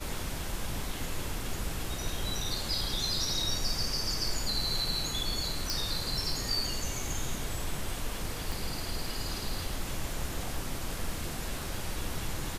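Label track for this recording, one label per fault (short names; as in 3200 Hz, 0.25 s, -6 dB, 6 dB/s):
5.700000	5.700000	pop
8.520000	8.520000	pop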